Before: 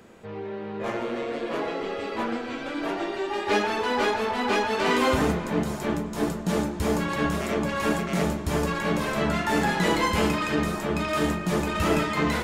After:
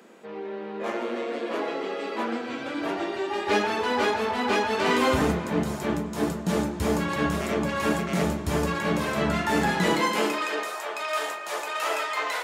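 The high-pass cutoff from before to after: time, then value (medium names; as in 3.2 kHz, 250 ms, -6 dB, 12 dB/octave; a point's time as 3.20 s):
high-pass 24 dB/octave
2.26 s 210 Hz
2.85 s 53 Hz
9.79 s 53 Hz
10.15 s 230 Hz
10.74 s 560 Hz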